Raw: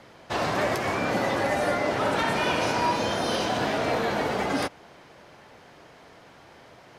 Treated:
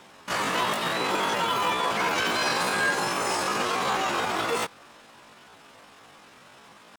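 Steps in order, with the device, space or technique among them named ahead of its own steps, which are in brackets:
chipmunk voice (pitch shifter +9 semitones)

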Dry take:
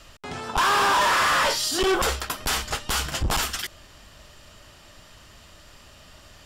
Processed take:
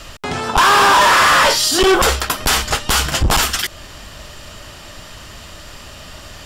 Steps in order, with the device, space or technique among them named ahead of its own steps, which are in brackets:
parallel compression (in parallel at −1.5 dB: downward compressor, threshold −35 dBFS, peak gain reduction 14 dB)
on the sum: level +8 dB

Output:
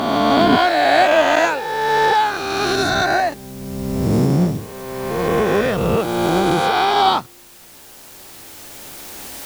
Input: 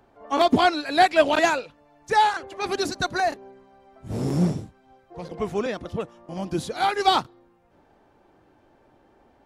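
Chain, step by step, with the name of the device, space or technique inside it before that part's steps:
peak hold with a rise ahead of every peak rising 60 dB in 2.45 s
high-shelf EQ 6,100 Hz −7 dB
cheap recorder with automatic gain (white noise bed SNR 27 dB; camcorder AGC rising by 5.9 dB per second)

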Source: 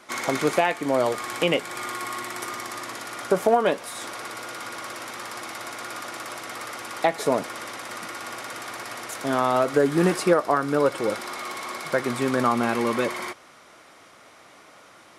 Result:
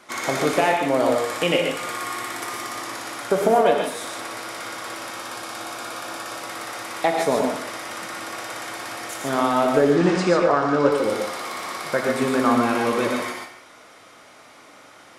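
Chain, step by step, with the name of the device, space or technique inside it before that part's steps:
0:04.99–0:06.38: notch filter 2,000 Hz, Q 7.4
0:09.80–0:10.92: low-pass filter 6,900 Hz 24 dB per octave
reverb whose tail is shaped and stops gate 170 ms rising, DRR 2 dB
saturated reverb return (on a send at −6.5 dB: convolution reverb RT60 0.75 s, pre-delay 23 ms + soft clipping −14.5 dBFS, distortion −16 dB)

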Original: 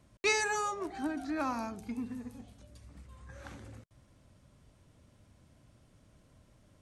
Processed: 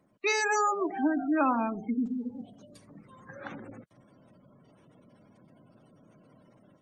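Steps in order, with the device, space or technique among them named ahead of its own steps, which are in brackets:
noise-suppressed video call (high-pass filter 150 Hz 24 dB per octave; gate on every frequency bin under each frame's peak −20 dB strong; automatic gain control gain up to 8.5 dB; Opus 24 kbit/s 48,000 Hz)

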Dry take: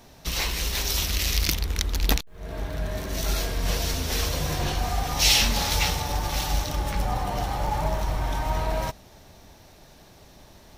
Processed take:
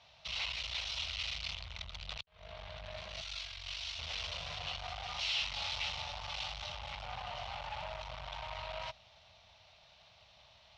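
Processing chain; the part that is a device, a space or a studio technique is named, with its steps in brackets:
0:03.21–0:03.99: guitar amp tone stack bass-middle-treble 10-0-10
scooped metal amplifier (tube saturation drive 30 dB, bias 0.6; loudspeaker in its box 100–4,000 Hz, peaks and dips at 150 Hz −4 dB, 290 Hz −10 dB, 410 Hz −5 dB, 640 Hz +6 dB, 1,700 Hz −9 dB, 2,900 Hz +3 dB; guitar amp tone stack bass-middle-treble 10-0-10)
level +3 dB

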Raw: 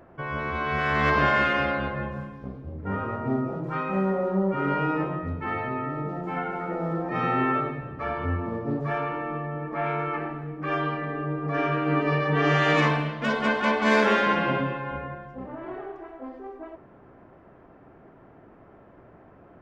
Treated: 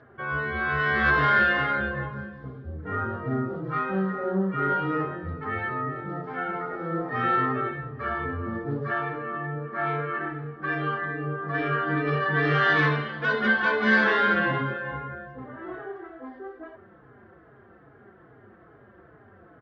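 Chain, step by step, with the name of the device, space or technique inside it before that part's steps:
barber-pole flanger into a guitar amplifier (barber-pole flanger 4.3 ms −2.4 Hz; soft clipping −16.5 dBFS, distortion −21 dB; loudspeaker in its box 78–4,300 Hz, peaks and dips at 170 Hz −7 dB, 280 Hz −8 dB, 610 Hz −8 dB, 920 Hz −8 dB, 1,600 Hz +6 dB, 2,500 Hz −10 dB)
level +5.5 dB

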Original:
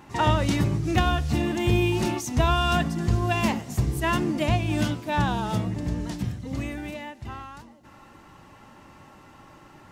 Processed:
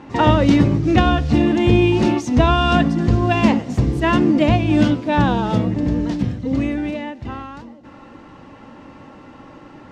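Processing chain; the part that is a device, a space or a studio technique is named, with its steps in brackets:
inside a cardboard box (low-pass filter 4,700 Hz 12 dB per octave; hollow resonant body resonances 270/490 Hz, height 9 dB, ringing for 30 ms)
level +5.5 dB

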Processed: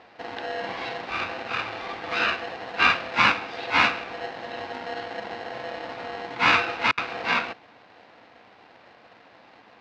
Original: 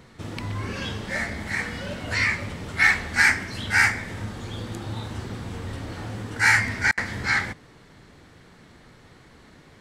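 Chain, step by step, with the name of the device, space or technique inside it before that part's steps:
ring modulator pedal into a guitar cabinet (ring modulator with a square carrier 590 Hz; loudspeaker in its box 110–4,100 Hz, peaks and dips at 150 Hz −7 dB, 400 Hz −8 dB, 3,200 Hz −4 dB)

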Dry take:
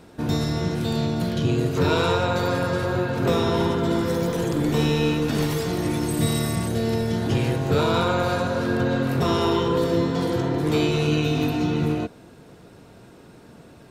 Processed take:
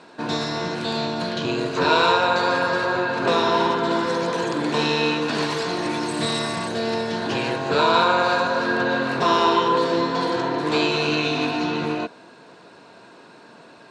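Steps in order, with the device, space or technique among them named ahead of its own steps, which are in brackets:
full-range speaker at full volume (highs frequency-modulated by the lows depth 0.13 ms; loudspeaker in its box 240–8,600 Hz, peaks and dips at 650 Hz +4 dB, 1,000 Hz +10 dB, 1,600 Hz +8 dB, 2,600 Hz +6 dB, 4,200 Hz +9 dB)

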